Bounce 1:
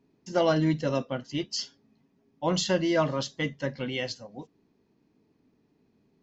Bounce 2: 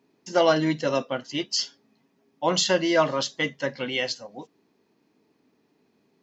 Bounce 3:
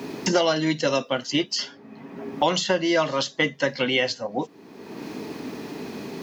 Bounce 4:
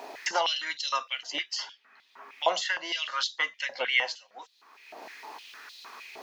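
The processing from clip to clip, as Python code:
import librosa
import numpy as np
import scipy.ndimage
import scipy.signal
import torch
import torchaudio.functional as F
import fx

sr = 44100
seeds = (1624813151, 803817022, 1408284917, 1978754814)

y1 = fx.highpass(x, sr, hz=470.0, slope=6)
y1 = F.gain(torch.from_numpy(y1), 6.5).numpy()
y2 = fx.band_squash(y1, sr, depth_pct=100)
y2 = F.gain(torch.from_numpy(y2), 2.0).numpy()
y3 = fx.filter_held_highpass(y2, sr, hz=6.5, low_hz=700.0, high_hz=3800.0)
y3 = F.gain(torch.from_numpy(y3), -7.0).numpy()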